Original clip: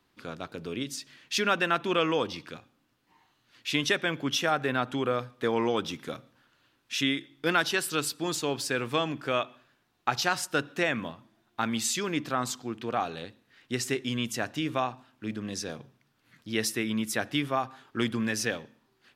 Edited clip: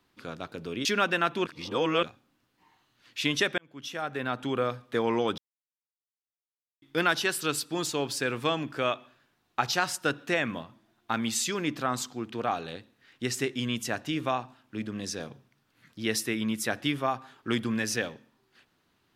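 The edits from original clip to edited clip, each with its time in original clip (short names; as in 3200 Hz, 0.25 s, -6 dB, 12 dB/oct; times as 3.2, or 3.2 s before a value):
0.85–1.34 cut
1.95–2.52 reverse
4.07–5.08 fade in
5.87–7.31 mute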